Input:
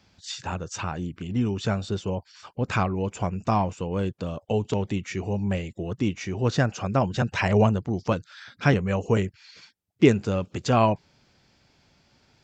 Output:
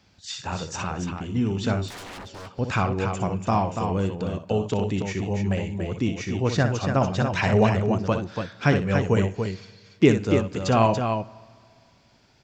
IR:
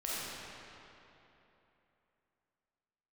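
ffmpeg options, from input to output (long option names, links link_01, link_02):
-filter_complex "[0:a]aecho=1:1:61.22|285.7:0.355|0.501,asplit=2[link_01][link_02];[1:a]atrim=start_sample=2205,asetrate=66150,aresample=44100[link_03];[link_02][link_03]afir=irnorm=-1:irlink=0,volume=-22dB[link_04];[link_01][link_04]amix=inputs=2:normalize=0,asettb=1/sr,asplit=3[link_05][link_06][link_07];[link_05]atrim=end=1.884[link_08];[link_06]atrim=start=1.88:end=2.59,asetpts=PTS-STARTPTS,afade=type=in:duration=0.004:curve=qsin,afade=type=out:start_time=0.706:duration=0.004:curve=qsin,aeval=exprs='0.02*(abs(mod(val(0)/0.02+3,4)-2)-1)':channel_layout=same[link_09];[link_07]atrim=start=2.586[link_10];[link_08][link_09]acrossfade=duration=0.004:curve1=hsin:curve2=qsin[link_11];[link_11][link_10]acrossfade=duration=0.004:curve1=qsin:curve2=hsin"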